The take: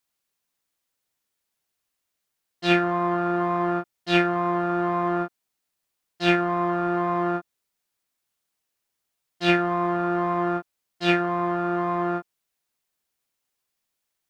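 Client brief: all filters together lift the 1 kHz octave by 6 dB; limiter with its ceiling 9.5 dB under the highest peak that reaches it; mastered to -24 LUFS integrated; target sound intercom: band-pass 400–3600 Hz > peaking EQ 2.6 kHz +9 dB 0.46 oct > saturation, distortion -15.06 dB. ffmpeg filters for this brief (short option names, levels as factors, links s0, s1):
-af "equalizer=f=1000:t=o:g=8,alimiter=limit=0.224:level=0:latency=1,highpass=400,lowpass=3600,equalizer=f=2600:t=o:w=0.46:g=9,asoftclip=threshold=0.112,volume=1.33"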